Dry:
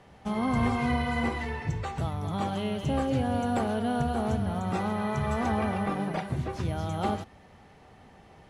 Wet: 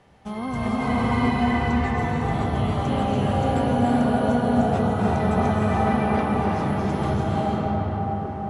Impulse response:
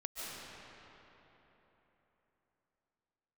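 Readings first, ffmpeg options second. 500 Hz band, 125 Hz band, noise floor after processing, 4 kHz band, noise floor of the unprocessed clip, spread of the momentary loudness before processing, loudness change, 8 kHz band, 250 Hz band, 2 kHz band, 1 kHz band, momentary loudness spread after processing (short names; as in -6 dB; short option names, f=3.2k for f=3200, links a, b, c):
+7.5 dB, +7.0 dB, -30 dBFS, +4.0 dB, -54 dBFS, 6 LU, +7.0 dB, n/a, +7.5 dB, +5.5 dB, +7.5 dB, 5 LU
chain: -filter_complex "[1:a]atrim=start_sample=2205,asetrate=22050,aresample=44100[a];[0:a][a]afir=irnorm=-1:irlink=0"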